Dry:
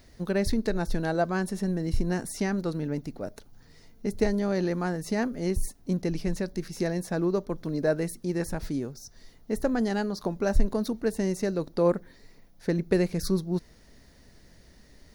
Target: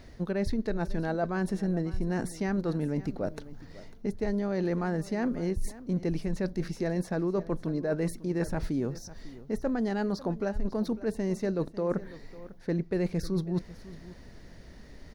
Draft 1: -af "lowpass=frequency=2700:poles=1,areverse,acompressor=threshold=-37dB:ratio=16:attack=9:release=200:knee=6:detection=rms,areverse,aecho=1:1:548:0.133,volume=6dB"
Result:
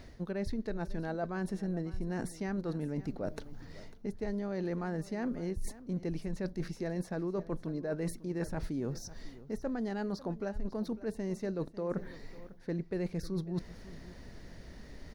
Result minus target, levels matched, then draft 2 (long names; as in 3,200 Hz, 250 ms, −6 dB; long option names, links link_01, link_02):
downward compressor: peak gain reduction +6 dB
-af "lowpass=frequency=2700:poles=1,areverse,acompressor=threshold=-30.5dB:ratio=16:attack=9:release=200:knee=6:detection=rms,areverse,aecho=1:1:548:0.133,volume=6dB"